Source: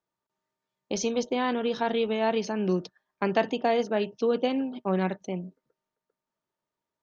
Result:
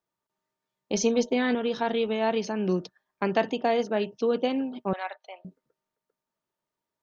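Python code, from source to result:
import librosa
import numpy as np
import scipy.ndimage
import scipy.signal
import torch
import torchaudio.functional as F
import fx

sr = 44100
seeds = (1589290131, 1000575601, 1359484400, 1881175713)

y = fx.comb(x, sr, ms=4.5, depth=0.77, at=(0.93, 1.55))
y = fx.ellip_bandpass(y, sr, low_hz=660.0, high_hz=4300.0, order=3, stop_db=50, at=(4.93, 5.45))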